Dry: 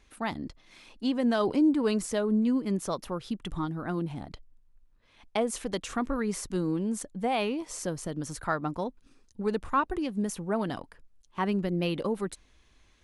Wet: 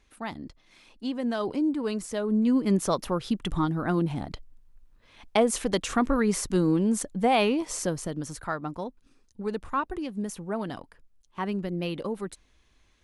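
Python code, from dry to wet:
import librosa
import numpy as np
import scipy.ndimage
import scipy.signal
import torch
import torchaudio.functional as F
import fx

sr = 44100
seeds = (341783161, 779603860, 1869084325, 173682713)

y = fx.gain(x, sr, db=fx.line((2.08, -3.0), (2.69, 6.0), (7.7, 6.0), (8.5, -2.0)))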